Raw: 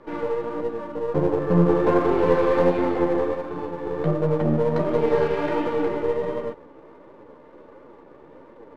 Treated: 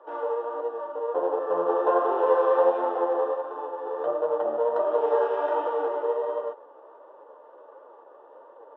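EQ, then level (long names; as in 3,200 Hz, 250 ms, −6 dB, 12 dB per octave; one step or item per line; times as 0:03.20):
moving average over 20 samples
high-pass filter 550 Hz 24 dB per octave
+4.5 dB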